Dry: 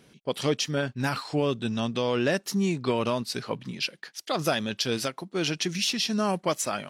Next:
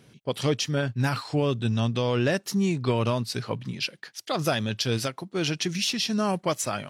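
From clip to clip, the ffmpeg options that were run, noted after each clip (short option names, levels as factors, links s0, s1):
-af "equalizer=f=110:w=2.2:g=10.5"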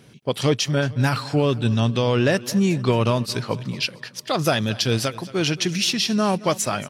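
-af "aecho=1:1:224|448|672|896|1120:0.112|0.0617|0.0339|0.0187|0.0103,volume=1.78"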